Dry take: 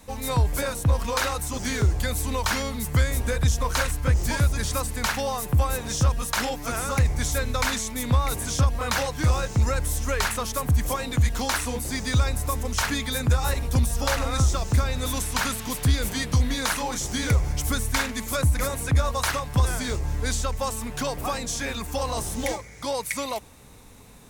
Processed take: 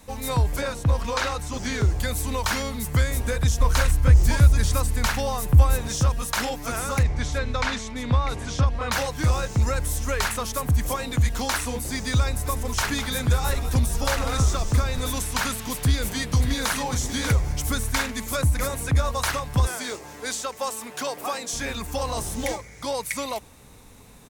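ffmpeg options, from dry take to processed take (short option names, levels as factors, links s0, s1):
-filter_complex "[0:a]asettb=1/sr,asplit=3[s0][s1][s2];[s0]atrim=end=0.564[s3];[s1]atrim=start=0.56:end=2,asetpts=PTS-STARTPTS,afade=t=in:d=0.004:c=qsin,afade=t=out:st=1.436:d=0.004:c=qsin,acrossover=split=7100[s4][s5];[s5]acompressor=threshold=0.00355:ratio=4:attack=1:release=60[s6];[s4][s6]amix=inputs=2:normalize=0[s7];[s2]atrim=start=1.996[s8];[s3][s7]acrossfade=d=0.004:c1=hsin:c2=qsin[s9];[s9][s8]acrossfade=d=0.004:c1=qsin:c2=hsin,asettb=1/sr,asplit=3[s10][s11][s12];[s10]atrim=end=3.604[s13];[s11]atrim=start=3.6:end=5.88,asetpts=PTS-STARTPTS,afade=t=in:d=0.004:c=qsin,afade=t=out:st=2.276:d=0.004:c=qsin,lowshelf=f=98:g=11[s14];[s12]atrim=start=5.876[s15];[s13][s14]acrossfade=d=0.004:c1=hsin:c2=qsin[s16];[s16][s15]acrossfade=d=0.004:c1=qsin:c2=hsin,asettb=1/sr,asplit=3[s17][s18][s19];[s17]atrim=end=7.034[s20];[s18]atrim=start=7.03:end=8.92,asetpts=PTS-STARTPTS,afade=t=in:d=0.004:c=qsin,afade=t=out:st=1.886:d=0.004:c=qsin,lowpass=4600[s21];[s19]atrim=start=8.916[s22];[s20][s21]acrossfade=d=0.004:c1=hsin:c2=qsin[s23];[s23][s22]acrossfade=d=0.004:c1=qsin:c2=hsin,asettb=1/sr,asplit=3[s24][s25][s26];[s24]atrim=end=12.264[s27];[s25]atrim=start=12.26:end=15.1,asetpts=PTS-STARTPTS,afade=t=in:d=0.004:c=qsin,afade=t=out:st=2.836:d=0.004:c=qsin,asplit=5[s28][s29][s30][s31][s32];[s29]adelay=200,afreqshift=-88,volume=0.282[s33];[s30]adelay=400,afreqshift=-176,volume=0.0933[s34];[s31]adelay=600,afreqshift=-264,volume=0.0305[s35];[s32]adelay=800,afreqshift=-352,volume=0.0101[s36];[s28][s33][s34][s35][s36]amix=inputs=5:normalize=0,atrim=end_sample=125244[s37];[s26]atrim=start=15.096[s38];[s27][s37]acrossfade=d=0.004:c1=hsin:c2=qsin[s39];[s39][s38]acrossfade=d=0.004:c1=qsin:c2=hsin,asplit=2[s40][s41];[s41]afade=t=in:st=15.77:d=0.01,afade=t=out:st=16.73:d=0.01,aecho=0:1:590|1180:0.398107|0.0597161[s42];[s40][s42]amix=inputs=2:normalize=0,asettb=1/sr,asplit=3[s43][s44][s45];[s43]atrim=end=19.674[s46];[s44]atrim=start=19.67:end=21.53,asetpts=PTS-STARTPTS,afade=t=in:d=0.004:c=qsin,afade=t=out:st=1.856:d=0.004:c=qsin,highpass=320[s47];[s45]atrim=start=21.526[s48];[s46][s47]acrossfade=d=0.004:c1=hsin:c2=qsin[s49];[s49][s48]acrossfade=d=0.004:c1=qsin:c2=hsin"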